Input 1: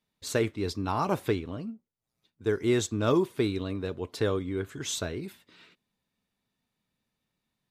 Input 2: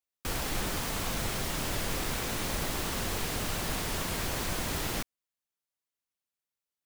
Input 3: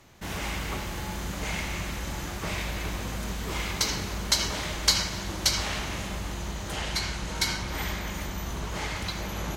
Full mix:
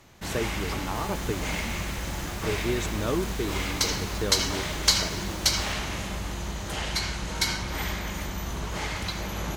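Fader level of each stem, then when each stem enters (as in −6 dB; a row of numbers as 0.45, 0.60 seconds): −4.0, −11.5, +1.0 decibels; 0.00, 0.70, 0.00 seconds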